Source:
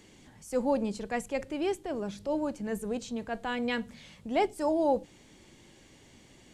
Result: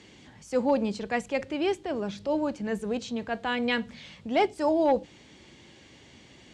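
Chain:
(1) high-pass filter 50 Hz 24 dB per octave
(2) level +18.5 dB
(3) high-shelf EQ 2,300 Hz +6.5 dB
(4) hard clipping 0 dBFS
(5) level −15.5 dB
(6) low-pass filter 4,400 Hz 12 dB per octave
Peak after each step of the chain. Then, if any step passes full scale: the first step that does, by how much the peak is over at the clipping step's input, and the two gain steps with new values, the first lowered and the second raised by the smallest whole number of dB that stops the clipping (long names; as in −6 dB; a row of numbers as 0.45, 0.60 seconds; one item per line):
−15.5, +3.0, +4.0, 0.0, −15.5, −15.0 dBFS
step 2, 4.0 dB
step 2 +14.5 dB, step 5 −11.5 dB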